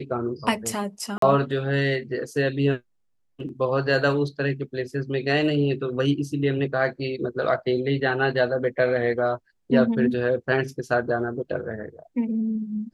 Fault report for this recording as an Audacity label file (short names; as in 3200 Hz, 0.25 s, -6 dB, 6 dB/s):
1.180000	1.220000	gap 43 ms